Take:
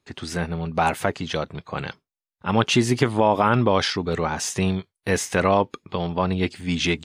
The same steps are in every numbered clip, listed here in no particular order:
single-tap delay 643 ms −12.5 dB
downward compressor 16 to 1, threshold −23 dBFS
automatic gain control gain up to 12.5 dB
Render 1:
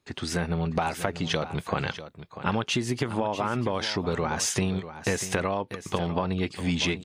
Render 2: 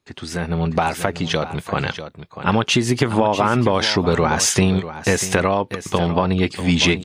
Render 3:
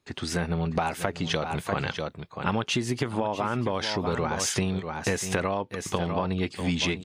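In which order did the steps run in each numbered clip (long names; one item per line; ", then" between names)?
automatic gain control, then downward compressor, then single-tap delay
downward compressor, then single-tap delay, then automatic gain control
single-tap delay, then automatic gain control, then downward compressor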